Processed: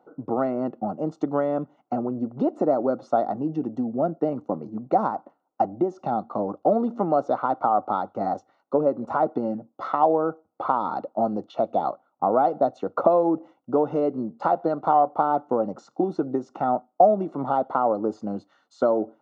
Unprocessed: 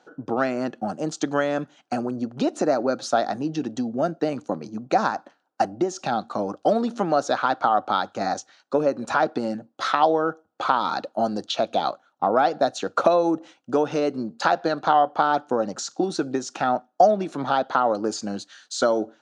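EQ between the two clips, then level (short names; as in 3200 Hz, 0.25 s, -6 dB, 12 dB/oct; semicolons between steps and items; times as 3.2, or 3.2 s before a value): polynomial smoothing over 65 samples; 0.0 dB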